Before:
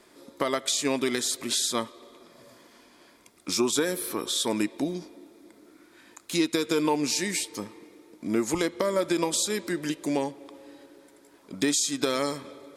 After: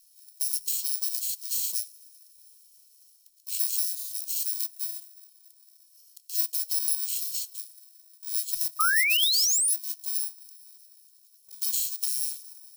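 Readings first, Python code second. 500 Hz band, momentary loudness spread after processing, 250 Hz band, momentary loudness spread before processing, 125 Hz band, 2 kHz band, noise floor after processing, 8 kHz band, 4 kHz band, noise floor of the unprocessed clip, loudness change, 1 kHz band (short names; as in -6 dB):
under -40 dB, 13 LU, under -40 dB, 13 LU, under -40 dB, +3.5 dB, -60 dBFS, +2.5 dB, +0.5 dB, -57 dBFS, +1.5 dB, -5.5 dB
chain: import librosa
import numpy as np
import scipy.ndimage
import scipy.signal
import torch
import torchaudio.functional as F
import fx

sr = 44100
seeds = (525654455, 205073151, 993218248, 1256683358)

y = fx.bit_reversed(x, sr, seeds[0], block=64)
y = scipy.signal.sosfilt(scipy.signal.cheby2(4, 80, [140.0, 820.0], 'bandstop', fs=sr, output='sos'), y)
y = fx.spec_paint(y, sr, seeds[1], shape='rise', start_s=8.79, length_s=0.95, low_hz=1200.0, high_hz=11000.0, level_db=-23.0)
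y = y * 10.0 ** (-1.0 / 20.0)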